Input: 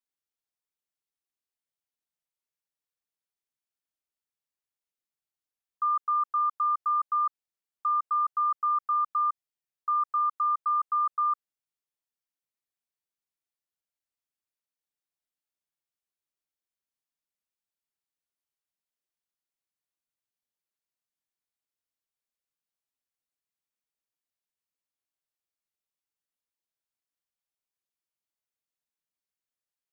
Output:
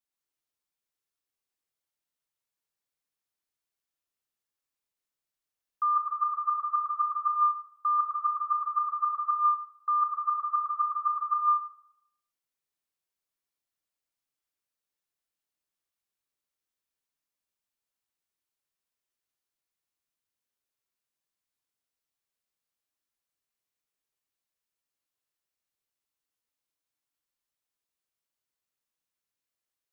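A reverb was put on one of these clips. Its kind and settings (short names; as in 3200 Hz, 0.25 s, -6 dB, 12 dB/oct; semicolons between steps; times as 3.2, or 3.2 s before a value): plate-style reverb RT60 0.74 s, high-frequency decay 0.9×, pre-delay 0.12 s, DRR 0.5 dB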